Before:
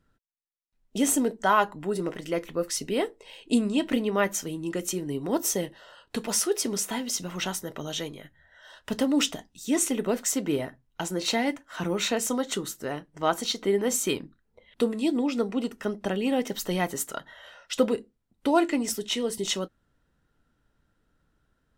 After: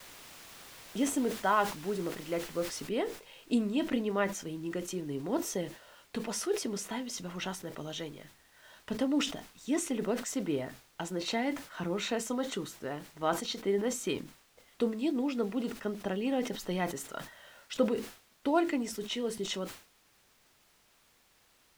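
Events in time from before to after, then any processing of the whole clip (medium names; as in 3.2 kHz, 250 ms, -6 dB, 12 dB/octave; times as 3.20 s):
2.89 s: noise floor step -40 dB -51 dB
whole clip: low-pass 3.9 kHz 6 dB/octave; expander -51 dBFS; decay stretcher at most 130 dB/s; trim -5.5 dB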